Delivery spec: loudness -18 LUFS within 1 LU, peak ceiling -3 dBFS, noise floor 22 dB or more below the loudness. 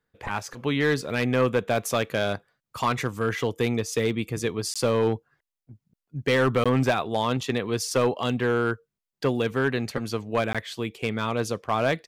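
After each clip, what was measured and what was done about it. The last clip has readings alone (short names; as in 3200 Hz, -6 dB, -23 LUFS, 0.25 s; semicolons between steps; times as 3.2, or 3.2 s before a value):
clipped 0.9%; flat tops at -15.0 dBFS; dropouts 3; longest dropout 16 ms; loudness -26.0 LUFS; peak -15.0 dBFS; loudness target -18.0 LUFS
-> clip repair -15 dBFS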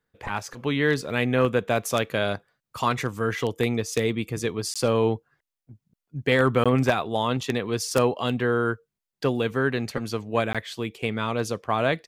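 clipped 0.0%; dropouts 3; longest dropout 16 ms
-> interpolate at 4.74/6.64/10.53, 16 ms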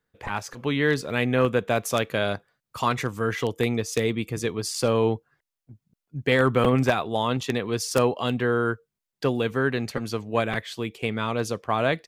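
dropouts 0; loudness -25.5 LUFS; peak -6.0 dBFS; loudness target -18.0 LUFS
-> gain +7.5 dB; limiter -3 dBFS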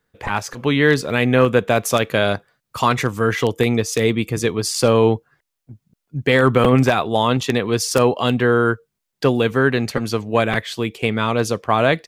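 loudness -18.5 LUFS; peak -3.0 dBFS; noise floor -79 dBFS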